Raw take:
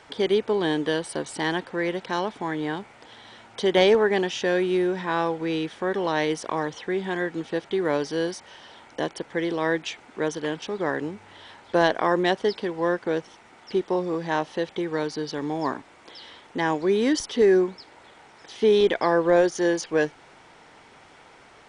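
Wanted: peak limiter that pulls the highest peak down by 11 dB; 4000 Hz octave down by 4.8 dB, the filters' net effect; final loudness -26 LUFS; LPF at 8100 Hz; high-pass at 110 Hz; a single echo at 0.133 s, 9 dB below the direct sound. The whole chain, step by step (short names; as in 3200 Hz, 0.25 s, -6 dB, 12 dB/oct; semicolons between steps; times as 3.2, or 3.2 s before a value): HPF 110 Hz; LPF 8100 Hz; bell 4000 Hz -6.5 dB; limiter -18.5 dBFS; echo 0.133 s -9 dB; gain +3 dB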